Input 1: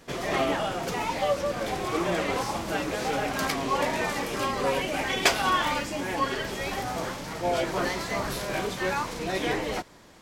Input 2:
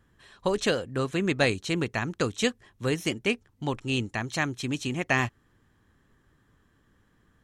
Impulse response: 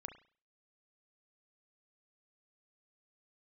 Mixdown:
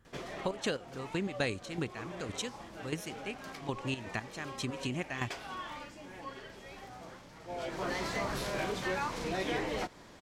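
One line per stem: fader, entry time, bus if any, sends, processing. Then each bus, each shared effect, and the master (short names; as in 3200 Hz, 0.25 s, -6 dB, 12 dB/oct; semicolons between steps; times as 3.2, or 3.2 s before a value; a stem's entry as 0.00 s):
-1.5 dB, 0.05 s, send -17.5 dB, high shelf 11000 Hz -10.5 dB; auto duck -21 dB, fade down 0.45 s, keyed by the second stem
-2.0 dB, 0.00 s, no send, step gate "x.xx.x..." 118 bpm -12 dB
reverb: on, pre-delay 33 ms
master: compressor 2:1, threshold -34 dBFS, peak gain reduction 8 dB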